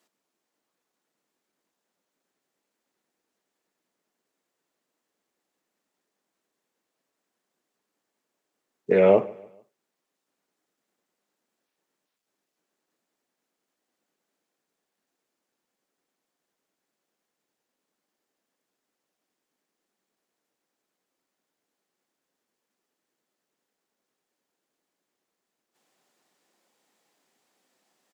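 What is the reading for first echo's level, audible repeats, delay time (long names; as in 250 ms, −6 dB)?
−22.0 dB, 2, 146 ms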